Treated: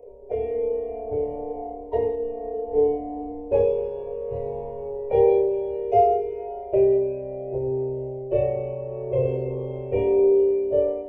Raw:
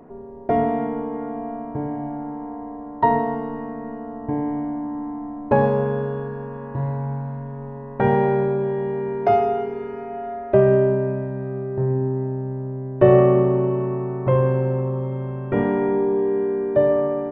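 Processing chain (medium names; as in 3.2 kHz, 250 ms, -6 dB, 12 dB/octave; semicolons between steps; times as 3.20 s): FFT filter 100 Hz 0 dB, 170 Hz -23 dB, 330 Hz -11 dB, 470 Hz +14 dB, 690 Hz +1 dB, 1.6 kHz -30 dB, 2.3 kHz 0 dB, 4.1 kHz -9 dB, 6.4 kHz 0 dB; plain phase-vocoder stretch 0.64×; level rider gain up to 10 dB; chorus voices 6, 0.12 Hz, delay 29 ms, depth 2.3 ms; dynamic bell 670 Hz, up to -6 dB, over -29 dBFS, Q 0.75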